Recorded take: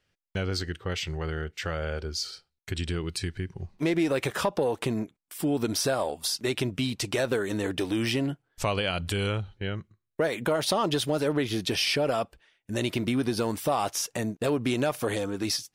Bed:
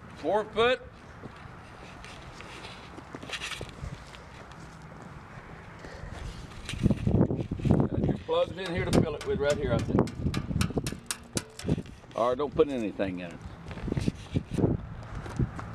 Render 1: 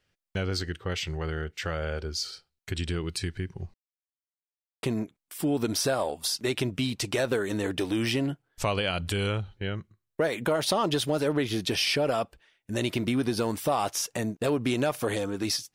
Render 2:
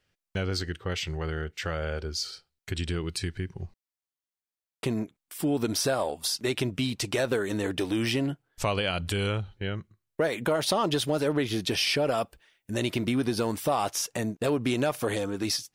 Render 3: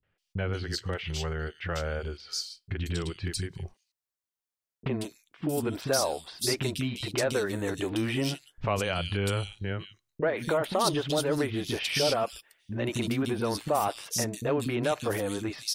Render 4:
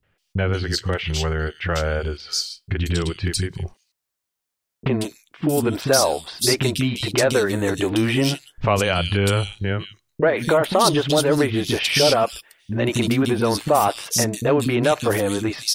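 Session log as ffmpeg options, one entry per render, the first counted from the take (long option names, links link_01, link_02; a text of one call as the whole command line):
ffmpeg -i in.wav -filter_complex "[0:a]asplit=3[link_01][link_02][link_03];[link_01]atrim=end=3.74,asetpts=PTS-STARTPTS,afade=type=out:start_time=3.736:duration=0.004:curve=hsin[link_04];[link_02]atrim=start=3.74:end=4.83,asetpts=PTS-STARTPTS,volume=0[link_05];[link_03]atrim=start=4.83,asetpts=PTS-STARTPTS,afade=type=in:duration=0.004:curve=hsin[link_06];[link_04][link_05][link_06]concat=n=3:v=0:a=1" out.wav
ffmpeg -i in.wav -filter_complex "[0:a]asettb=1/sr,asplit=3[link_01][link_02][link_03];[link_01]atrim=end=12.174[link_04];[link_02]atrim=start=12.17:end=12.71,asetpts=PTS-STARTPTS,afade=type=in:duration=0.004:curve=qsin,afade=type=out:start_time=0.536:duration=0.004:curve=qsin,highshelf=frequency=9400:gain=9.5[link_05];[link_03]atrim=start=12.706[link_06];[link_04][link_05]acrossfade=duration=0.004:curve1=hsin:curve2=qsin[link_07];[link_07][link_06]acrossfade=duration=0.004:curve1=qsin:curve2=hsin" out.wav
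ffmpeg -i in.wav -filter_complex "[0:a]acrossover=split=270|3000[link_01][link_02][link_03];[link_02]adelay=30[link_04];[link_03]adelay=180[link_05];[link_01][link_04][link_05]amix=inputs=3:normalize=0" out.wav
ffmpeg -i in.wav -af "volume=9.5dB,alimiter=limit=-3dB:level=0:latency=1" out.wav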